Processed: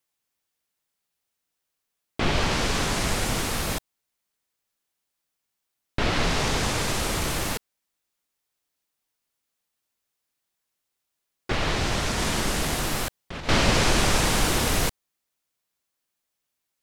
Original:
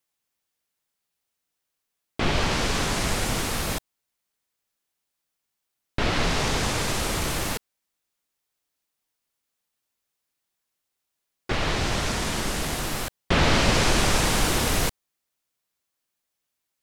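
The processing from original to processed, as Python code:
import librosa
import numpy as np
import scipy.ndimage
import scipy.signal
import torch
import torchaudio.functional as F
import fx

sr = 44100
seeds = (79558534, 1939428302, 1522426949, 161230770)

y = fx.over_compress(x, sr, threshold_db=-25.0, ratio=-0.5, at=(12.18, 13.49))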